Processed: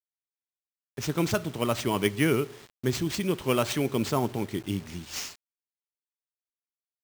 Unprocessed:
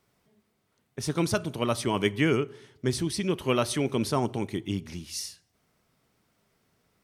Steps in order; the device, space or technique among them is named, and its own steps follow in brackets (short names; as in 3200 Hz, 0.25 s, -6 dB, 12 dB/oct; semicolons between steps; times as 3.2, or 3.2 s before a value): early 8-bit sampler (sample-rate reducer 12000 Hz, jitter 0%; bit-crush 8-bit)